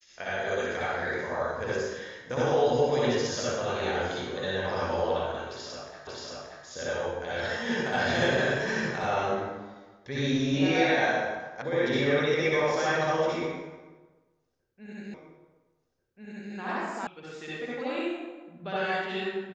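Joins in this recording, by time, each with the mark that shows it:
0:06.07: the same again, the last 0.58 s
0:11.62: cut off before it has died away
0:15.14: the same again, the last 1.39 s
0:17.07: cut off before it has died away

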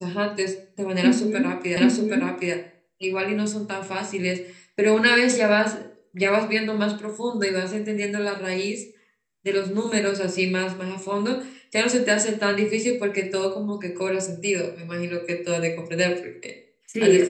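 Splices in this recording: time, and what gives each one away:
0:01.77: the same again, the last 0.77 s

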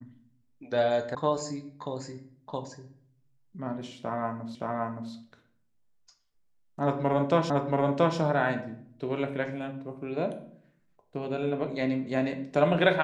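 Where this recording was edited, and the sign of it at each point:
0:01.15: cut off before it has died away
0:04.55: the same again, the last 0.57 s
0:07.50: the same again, the last 0.68 s

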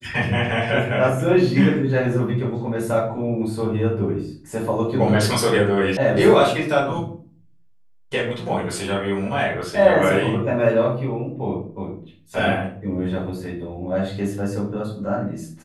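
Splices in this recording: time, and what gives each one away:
0:05.97: cut off before it has died away

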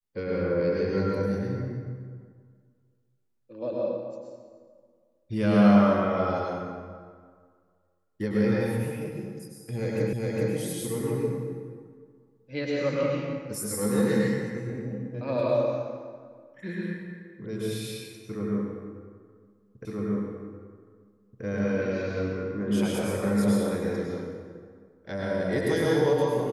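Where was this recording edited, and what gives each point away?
0:10.13: the same again, the last 0.41 s
0:19.85: the same again, the last 1.58 s

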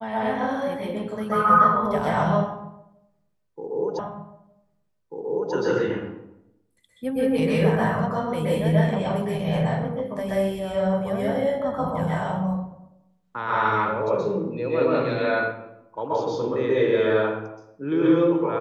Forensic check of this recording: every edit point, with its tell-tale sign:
0:03.99: the same again, the last 1.54 s

